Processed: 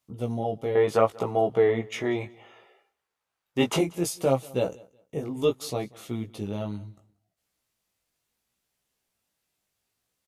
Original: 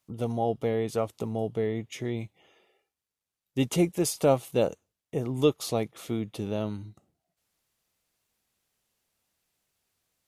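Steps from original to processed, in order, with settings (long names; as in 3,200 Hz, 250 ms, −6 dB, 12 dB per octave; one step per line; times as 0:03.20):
0:00.75–0:03.79: parametric band 1,100 Hz +14.5 dB 2.9 octaves
chorus effect 0.68 Hz, delay 15 ms, depth 5 ms
repeating echo 186 ms, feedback 23%, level −24 dB
level +1.5 dB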